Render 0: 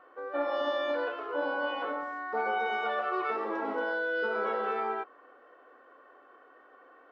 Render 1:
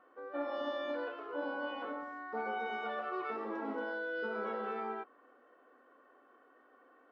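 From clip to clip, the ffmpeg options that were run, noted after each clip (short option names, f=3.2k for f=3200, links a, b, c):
-af "equalizer=f=230:w=1.9:g=10,volume=-8dB"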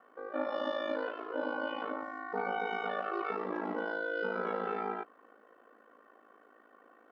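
-af "aeval=exprs='val(0)*sin(2*PI*27*n/s)':c=same,volume=6dB"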